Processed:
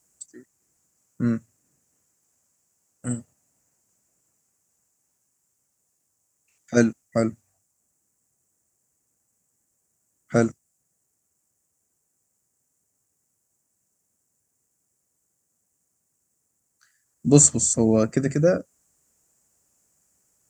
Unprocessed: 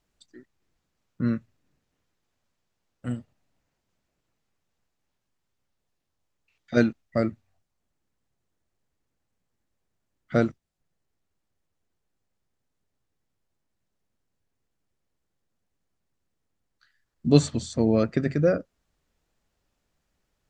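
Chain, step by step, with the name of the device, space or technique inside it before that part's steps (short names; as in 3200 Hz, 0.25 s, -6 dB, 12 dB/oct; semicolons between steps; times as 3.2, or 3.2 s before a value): budget condenser microphone (HPF 87 Hz 12 dB/oct; resonant high shelf 5300 Hz +12.5 dB, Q 3); gain +2.5 dB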